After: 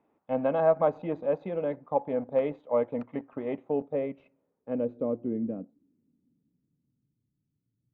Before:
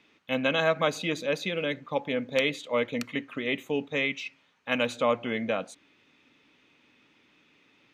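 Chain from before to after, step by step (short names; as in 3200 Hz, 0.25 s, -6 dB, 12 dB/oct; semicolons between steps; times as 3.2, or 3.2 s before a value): in parallel at -6 dB: sample gate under -34 dBFS; on the sum: low-pass sweep 790 Hz -> 120 Hz, 3.54–7.29; gain -6 dB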